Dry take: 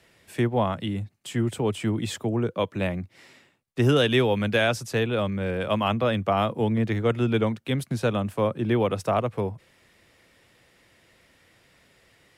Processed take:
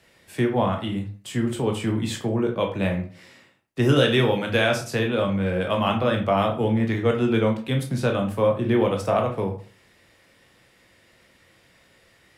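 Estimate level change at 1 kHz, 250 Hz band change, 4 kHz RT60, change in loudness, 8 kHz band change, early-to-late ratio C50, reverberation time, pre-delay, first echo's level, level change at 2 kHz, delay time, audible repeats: +2.0 dB, +2.5 dB, 0.30 s, +2.0 dB, +1.5 dB, 9.0 dB, 0.40 s, 14 ms, none, +2.0 dB, none, none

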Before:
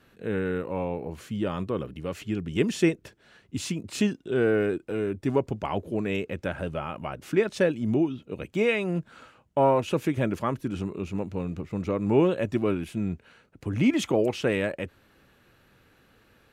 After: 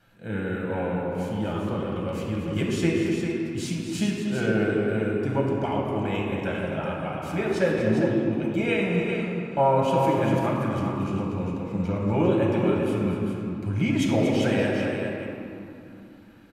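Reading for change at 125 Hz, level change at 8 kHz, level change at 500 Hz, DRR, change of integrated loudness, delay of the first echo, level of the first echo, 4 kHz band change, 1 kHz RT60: +4.5 dB, 0.0 dB, +1.0 dB, -4.0 dB, +2.0 dB, 0.238 s, -9.5 dB, +1.5 dB, 3.2 s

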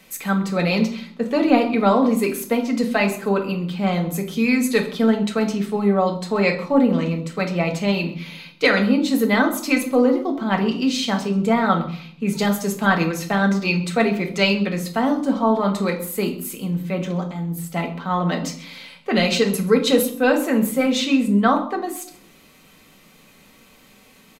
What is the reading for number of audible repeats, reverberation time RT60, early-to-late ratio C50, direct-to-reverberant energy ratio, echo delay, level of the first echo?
1, 0.60 s, 10.5 dB, 2.0 dB, 0.131 s, -20.0 dB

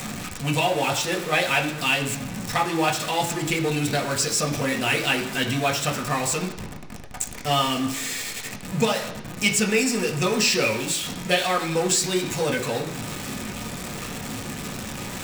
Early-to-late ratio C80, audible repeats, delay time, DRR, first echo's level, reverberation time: 11.5 dB, none, none, 0.5 dB, none, 1.0 s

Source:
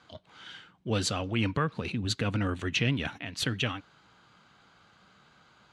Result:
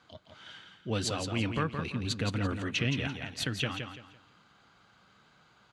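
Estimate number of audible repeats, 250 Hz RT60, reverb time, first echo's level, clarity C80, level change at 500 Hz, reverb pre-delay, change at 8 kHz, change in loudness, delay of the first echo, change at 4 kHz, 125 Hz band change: 3, none, none, -6.5 dB, none, -2.0 dB, none, -2.0 dB, -2.0 dB, 0.169 s, -2.0 dB, -2.0 dB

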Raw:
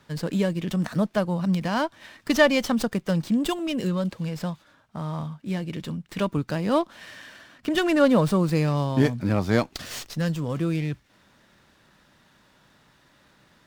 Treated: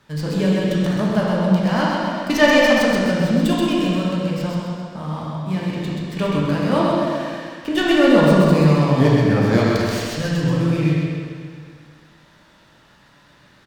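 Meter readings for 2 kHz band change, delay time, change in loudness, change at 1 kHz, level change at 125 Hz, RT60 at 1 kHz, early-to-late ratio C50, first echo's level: +8.0 dB, 0.13 s, +7.0 dB, +7.5 dB, +7.5 dB, 2.1 s, -3.5 dB, -4.0 dB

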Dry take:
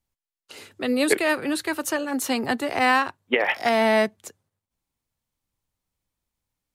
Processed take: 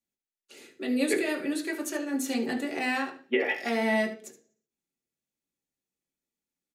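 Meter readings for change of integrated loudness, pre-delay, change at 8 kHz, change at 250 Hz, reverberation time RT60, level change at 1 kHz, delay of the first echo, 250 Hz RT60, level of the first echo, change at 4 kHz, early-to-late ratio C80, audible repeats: -6.0 dB, 3 ms, -6.0 dB, -3.0 dB, 0.40 s, -11.5 dB, 73 ms, 0.60 s, -12.5 dB, -8.0 dB, 15.5 dB, 1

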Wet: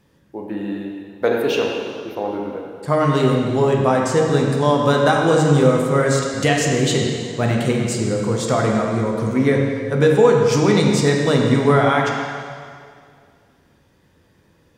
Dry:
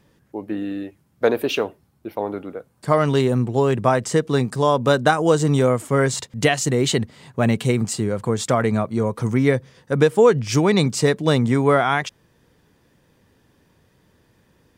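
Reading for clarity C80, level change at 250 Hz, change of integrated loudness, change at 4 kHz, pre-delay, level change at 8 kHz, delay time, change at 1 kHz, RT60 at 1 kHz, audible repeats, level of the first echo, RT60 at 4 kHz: 2.5 dB, +2.5 dB, +2.0 dB, +2.0 dB, 4 ms, +1.0 dB, none, +2.0 dB, 2.1 s, none, none, 2.0 s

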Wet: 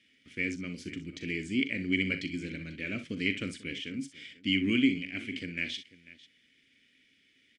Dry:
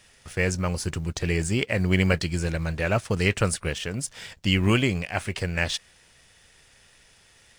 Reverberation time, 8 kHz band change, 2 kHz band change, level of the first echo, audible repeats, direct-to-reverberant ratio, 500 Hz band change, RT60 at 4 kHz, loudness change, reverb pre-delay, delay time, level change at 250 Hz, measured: none, -18.5 dB, -5.0 dB, -12.0 dB, 2, none, -14.0 dB, none, -7.0 dB, none, 41 ms, -3.5 dB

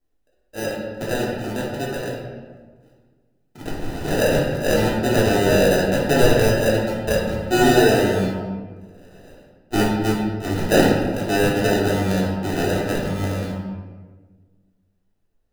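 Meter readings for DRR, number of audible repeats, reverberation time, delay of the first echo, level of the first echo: -5.0 dB, none, 1.5 s, none, none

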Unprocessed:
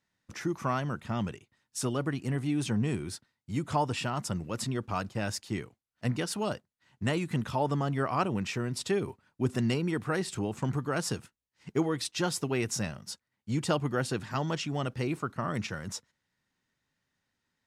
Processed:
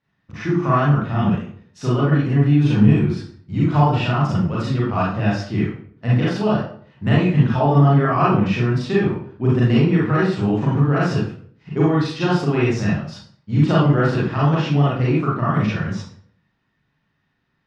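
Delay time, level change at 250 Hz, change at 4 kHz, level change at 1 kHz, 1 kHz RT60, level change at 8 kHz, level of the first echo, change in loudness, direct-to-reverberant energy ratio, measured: none, +14.0 dB, +5.5 dB, +11.5 dB, 0.50 s, n/a, none, +13.5 dB, -8.0 dB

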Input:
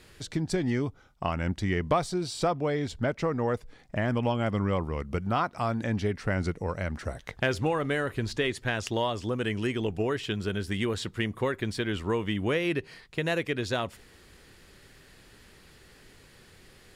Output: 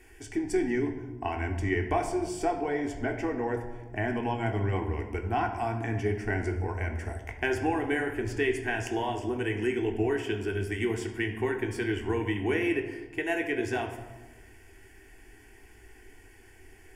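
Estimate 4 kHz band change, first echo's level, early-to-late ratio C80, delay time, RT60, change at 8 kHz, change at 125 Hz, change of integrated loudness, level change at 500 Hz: -7.0 dB, none, 10.0 dB, none, 1.2 s, -2.5 dB, -2.5 dB, -0.5 dB, -0.5 dB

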